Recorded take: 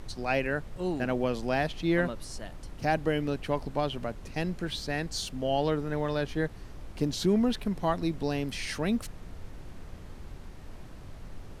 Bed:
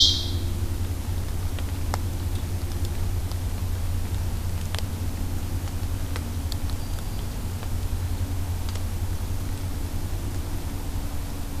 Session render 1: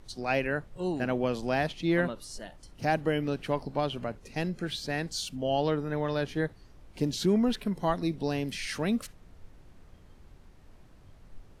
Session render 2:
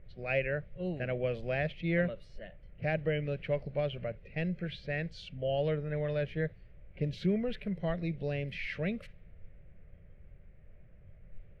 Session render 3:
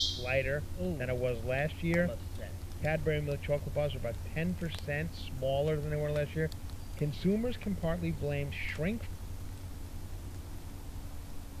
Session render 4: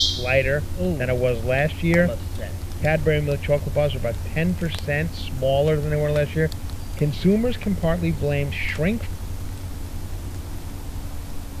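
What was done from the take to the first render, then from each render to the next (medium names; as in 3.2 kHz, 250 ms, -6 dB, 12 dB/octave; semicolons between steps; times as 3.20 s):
noise print and reduce 10 dB
level-controlled noise filter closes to 1.7 kHz, open at -27 dBFS; FFT filter 180 Hz 0 dB, 260 Hz -15 dB, 570 Hz +1 dB, 910 Hz -20 dB, 2.2 kHz +2 dB, 6.8 kHz -26 dB
add bed -14 dB
trim +11.5 dB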